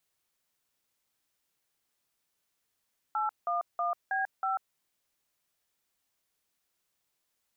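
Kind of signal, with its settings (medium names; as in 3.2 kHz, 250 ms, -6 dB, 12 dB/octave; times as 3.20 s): DTMF "811B5", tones 142 ms, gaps 178 ms, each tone -30 dBFS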